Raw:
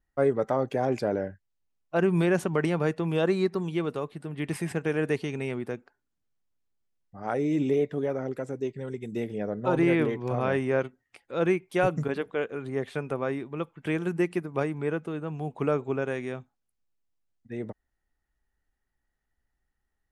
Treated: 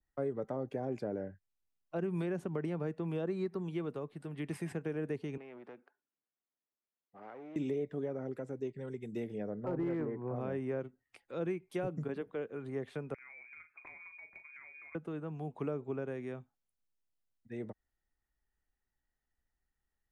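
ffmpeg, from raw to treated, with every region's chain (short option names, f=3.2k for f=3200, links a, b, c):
-filter_complex "[0:a]asettb=1/sr,asplit=3[a][b][c];[a]atrim=end=5.374[d];[b]atrim=start=5.37:end=7.56,asetpts=PTS-STARTPTS,afade=t=in:d=0.004:c=qsin,afade=t=out:st=2.186:d=0.004:c=qsin,acompressor=threshold=-36dB:ratio=4:attack=3.2:release=140:knee=1:detection=peak,aeval=exprs='clip(val(0),-1,0.00531)':c=same,highpass=280,lowpass=2.6k[e];[c]atrim=start=7.556[f];[d][e]acrossfade=d=0.004:c1=hsin:c2=qsin[g];[g][f]acrossfade=d=0.004:c1=qsin:c2=hsin,asettb=1/sr,asplit=3[h][i][j];[h]atrim=end=9.644[k];[i]atrim=start=9.64:end=10.36,asetpts=PTS-STARTPTS,afade=t=in:d=0.004:c=qsin,afade=t=out:st=0.716:d=0.004:c=qsin,lowpass=f=1.8k:w=0.5412,lowpass=f=1.8k:w=1.3066,acompressor=mode=upward:threshold=-30dB:ratio=2.5:attack=3.2:release=140:knee=2.83:detection=peak,asoftclip=type=hard:threshold=-17.5dB[l];[j]atrim=start=10.356[m];[k][l]acrossfade=d=0.004:c1=hsin:c2=qsin[n];[n][m]acrossfade=d=0.004:c1=qsin:c2=hsin,asettb=1/sr,asplit=3[o][p][q];[o]atrim=end=13.144[r];[p]atrim=start=13.14:end=14.95,asetpts=PTS-STARTPTS,afade=t=in:d=0.004:c=qsin,afade=t=out:st=1.806:d=0.004:c=qsin,lowpass=f=2.2k:t=q:w=0.5098,lowpass=f=2.2k:t=q:w=0.6013,lowpass=f=2.2k:t=q:w=0.9,lowpass=f=2.2k:t=q:w=2.563,afreqshift=-2600,acompressor=threshold=-40dB:ratio=16:attack=3.2:release=140:knee=1:detection=peak,asplit=2[s][t];[t]adelay=40,volume=-9dB[u];[s][u]amix=inputs=2:normalize=0,atrim=end_sample=79821[v];[q]atrim=start=14.946[w];[r][v]acrossfade=d=0.004:c1=hsin:c2=qsin[x];[x][w]acrossfade=d=0.004:c1=qsin:c2=hsin,acrossover=split=120|520[y][z][aa];[y]acompressor=threshold=-48dB:ratio=4[ab];[z]acompressor=threshold=-27dB:ratio=4[ac];[aa]acompressor=threshold=-40dB:ratio=4[ad];[ab][ac][ad]amix=inputs=3:normalize=0,adynamicequalizer=threshold=0.00282:dfrequency=2600:dqfactor=0.7:tfrequency=2600:tqfactor=0.7:attack=5:release=100:ratio=0.375:range=3:mode=cutabove:tftype=highshelf,volume=-6.5dB"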